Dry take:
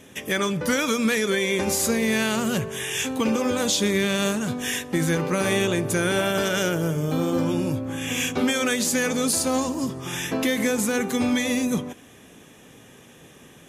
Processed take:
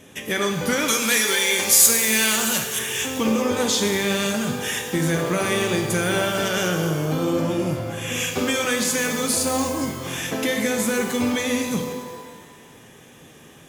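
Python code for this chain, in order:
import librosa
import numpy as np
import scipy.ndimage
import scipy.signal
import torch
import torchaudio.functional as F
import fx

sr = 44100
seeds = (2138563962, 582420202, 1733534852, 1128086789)

y = fx.tilt_eq(x, sr, slope=3.5, at=(0.88, 2.79))
y = fx.rev_shimmer(y, sr, seeds[0], rt60_s=1.4, semitones=12, shimmer_db=-8, drr_db=4.0)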